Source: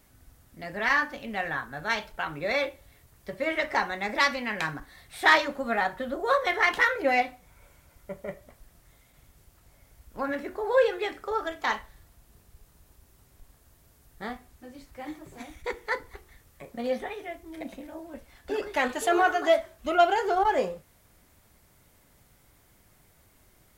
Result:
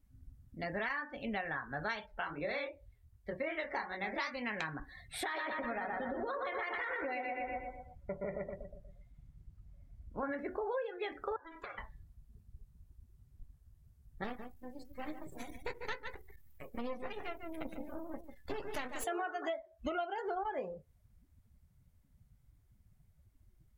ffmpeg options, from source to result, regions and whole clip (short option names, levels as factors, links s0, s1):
-filter_complex "[0:a]asettb=1/sr,asplit=3[s0][s1][s2];[s0]atrim=end=2.064[s3];[s1]atrim=start=2.06:end=4.34,asetpts=PTS-STARTPTS,afade=t=in:d=0.004:c=qsin,afade=t=out:st=2.276:d=0.004:c=qsin,equalizer=f=140:w=4.9:g=-7,flanger=delay=19.5:depth=8:speed=2.6[s4];[s2]atrim=start=4.336[s5];[s3][s4]acrossfade=d=0.004:c1=hsin:c2=qsin[s6];[s6][s5]acrossfade=d=0.004:c1=qsin:c2=hsin,asettb=1/sr,asplit=3[s7][s8][s9];[s7]atrim=end=5.234[s10];[s8]atrim=start=5.23:end=10.23,asetpts=PTS-STARTPTS,afade=t=in:d=0.004:c=qsin,afade=t=out:st=4.996:d=0.004:c=qsin,highshelf=f=9500:g=-9.5,asplit=2[s11][s12];[s12]adelay=120,lowpass=f=3400:p=1,volume=0.631,asplit=2[s13][s14];[s14]adelay=120,lowpass=f=3400:p=1,volume=0.5,asplit=2[s15][s16];[s16]adelay=120,lowpass=f=3400:p=1,volume=0.5,asplit=2[s17][s18];[s18]adelay=120,lowpass=f=3400:p=1,volume=0.5,asplit=2[s19][s20];[s20]adelay=120,lowpass=f=3400:p=1,volume=0.5,asplit=2[s21][s22];[s22]adelay=120,lowpass=f=3400:p=1,volume=0.5[s23];[s11][s13][s15][s17][s19][s21][s23]amix=inputs=7:normalize=0,atrim=end_sample=220500,acompressor=threshold=0.0251:ratio=6:attack=3.2:release=140:knee=1:detection=peak[s24];[s9]atrim=start=10.226[s25];[s10][s24]acrossfade=d=0.004:c1=hsin:c2=qsin[s26];[s26][s25]acrossfade=d=0.004:c1=qsin:c2=hsin,asettb=1/sr,asplit=3[s27][s28][s29];[s27]atrim=end=11.364[s30];[s28]atrim=start=11.36:end=11.78,asetpts=PTS-STARTPTS,afade=t=in:d=0.004:c=qsin,afade=t=out:st=0.416:d=0.004:c=qsin,equalizer=f=280:w=0.98:g=-5.5,acompressor=threshold=0.0112:ratio=12:attack=3.2:release=140:knee=1:detection=peak,aeval=exprs='val(0)*sin(2*PI*330*n/s)':c=same[s31];[s29]atrim=start=11.776[s32];[s30][s31]acrossfade=d=0.004:c1=hsin:c2=qsin[s33];[s33][s32]acrossfade=d=0.004:c1=qsin:c2=hsin,asettb=1/sr,asplit=3[s34][s35][s36];[s34]atrim=end=14.244[s37];[s35]atrim=start=14.24:end=19.04,asetpts=PTS-STARTPTS,afade=t=in:d=0.004:c=qsin,afade=t=out:st=4.796:d=0.004:c=qsin,aemphasis=mode=production:type=50kf,aeval=exprs='max(val(0),0)':c=same,aecho=1:1:146:0.355,atrim=end_sample=211680[s38];[s36]atrim=start=19.036[s39];[s37][s38]acrossfade=d=0.004:c1=hsin:c2=qsin[s40];[s40][s39]acrossfade=d=0.004:c1=qsin:c2=hsin,acompressor=threshold=0.0178:ratio=16,afftdn=nr=23:nf=-51,volume=1.12"